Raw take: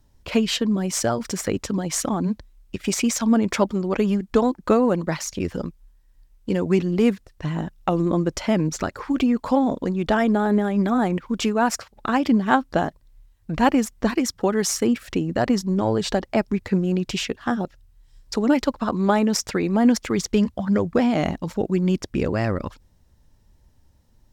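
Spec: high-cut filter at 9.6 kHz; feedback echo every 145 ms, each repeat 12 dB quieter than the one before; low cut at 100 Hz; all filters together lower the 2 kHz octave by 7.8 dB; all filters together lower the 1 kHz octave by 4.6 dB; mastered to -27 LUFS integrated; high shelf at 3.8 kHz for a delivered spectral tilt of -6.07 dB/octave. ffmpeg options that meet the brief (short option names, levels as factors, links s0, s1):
-af "highpass=100,lowpass=9600,equalizer=f=1000:t=o:g=-4.5,equalizer=f=2000:t=o:g=-8,highshelf=f=3800:g=-3.5,aecho=1:1:145|290|435:0.251|0.0628|0.0157,volume=0.668"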